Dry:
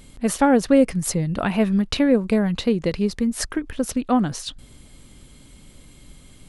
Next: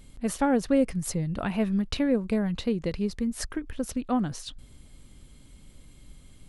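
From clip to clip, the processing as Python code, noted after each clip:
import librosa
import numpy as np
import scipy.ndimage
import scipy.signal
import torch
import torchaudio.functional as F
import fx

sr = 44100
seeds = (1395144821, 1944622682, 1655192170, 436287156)

y = fx.low_shelf(x, sr, hz=120.0, db=6.5)
y = y * 10.0 ** (-8.0 / 20.0)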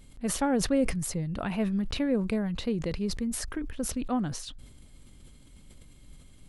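y = fx.sustainer(x, sr, db_per_s=58.0)
y = y * 10.0 ** (-3.0 / 20.0)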